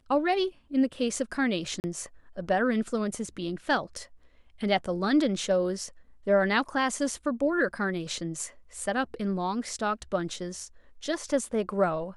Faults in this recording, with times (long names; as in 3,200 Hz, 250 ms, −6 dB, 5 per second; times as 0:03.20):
0:01.80–0:01.84: drop-out 39 ms